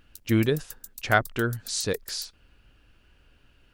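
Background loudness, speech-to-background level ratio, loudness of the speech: -43.5 LUFS, 16.5 dB, -27.0 LUFS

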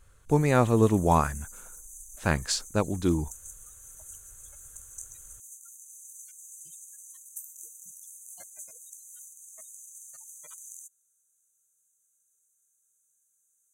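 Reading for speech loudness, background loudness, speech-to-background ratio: -25.5 LUFS, -44.0 LUFS, 18.5 dB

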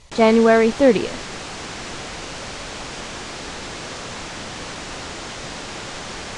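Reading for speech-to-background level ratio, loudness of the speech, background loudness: 15.5 dB, -15.5 LUFS, -31.0 LUFS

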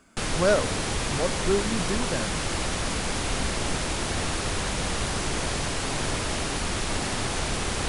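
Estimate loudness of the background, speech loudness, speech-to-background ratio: -28.0 LUFS, -28.0 LUFS, 0.0 dB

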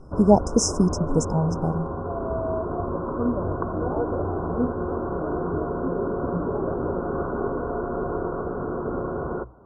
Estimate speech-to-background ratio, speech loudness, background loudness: 6.0 dB, -22.0 LUFS, -28.0 LUFS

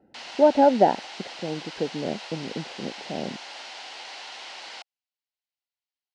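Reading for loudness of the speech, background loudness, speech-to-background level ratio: -24.0 LUFS, -38.5 LUFS, 14.5 dB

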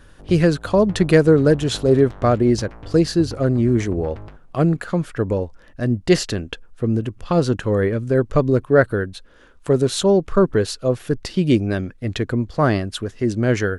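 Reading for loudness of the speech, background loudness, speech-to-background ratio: -19.5 LUFS, -37.5 LUFS, 18.0 dB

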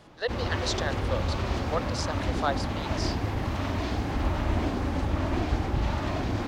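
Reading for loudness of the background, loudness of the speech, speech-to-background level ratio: -30.0 LUFS, -34.0 LUFS, -4.0 dB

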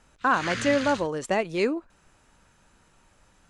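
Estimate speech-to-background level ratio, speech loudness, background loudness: 8.0 dB, -26.0 LUFS, -34.0 LUFS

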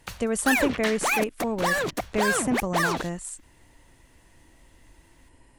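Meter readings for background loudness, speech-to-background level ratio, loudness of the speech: -27.0 LUFS, -1.5 dB, -28.5 LUFS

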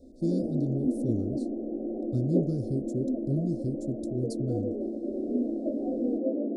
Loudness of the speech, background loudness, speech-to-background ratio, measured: -33.0 LUFS, -32.0 LUFS, -1.0 dB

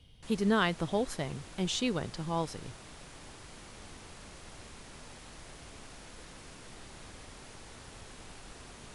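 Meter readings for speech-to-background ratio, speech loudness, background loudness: 17.0 dB, -32.5 LUFS, -49.5 LUFS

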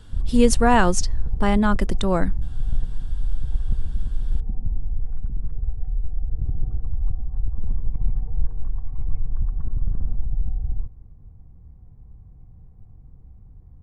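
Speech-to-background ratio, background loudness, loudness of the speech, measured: 9.5 dB, -30.5 LUFS, -21.0 LUFS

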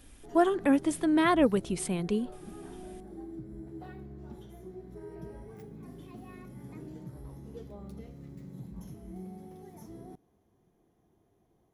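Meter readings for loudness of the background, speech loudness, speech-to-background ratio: -46.5 LUFS, -27.0 LUFS, 19.5 dB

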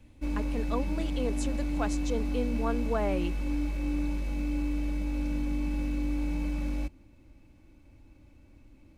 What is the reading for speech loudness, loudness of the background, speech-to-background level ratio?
-35.0 LUFS, -32.5 LUFS, -2.5 dB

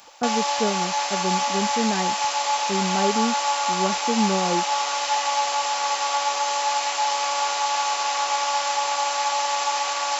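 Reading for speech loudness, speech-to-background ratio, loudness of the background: -27.5 LUFS, -4.5 dB, -23.0 LUFS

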